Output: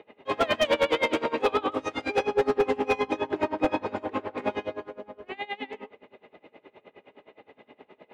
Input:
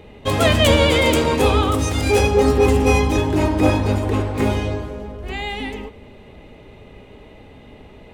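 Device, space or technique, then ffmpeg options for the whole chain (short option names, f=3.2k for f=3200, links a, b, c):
helicopter radio: -af "highpass=370,lowpass=2.6k,aeval=exprs='val(0)*pow(10,-24*(0.5-0.5*cos(2*PI*9.6*n/s))/20)':c=same,asoftclip=type=hard:threshold=-16dB"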